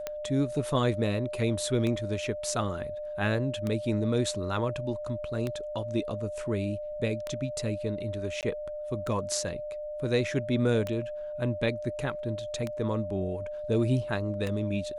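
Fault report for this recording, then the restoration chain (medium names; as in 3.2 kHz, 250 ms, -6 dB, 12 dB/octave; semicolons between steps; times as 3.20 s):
tick 33 1/3 rpm -18 dBFS
whine 600 Hz -34 dBFS
8.41–8.43 s: dropout 18 ms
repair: de-click; band-stop 600 Hz, Q 30; interpolate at 8.41 s, 18 ms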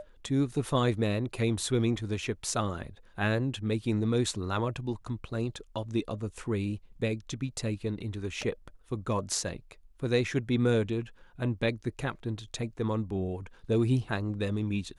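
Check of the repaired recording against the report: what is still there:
nothing left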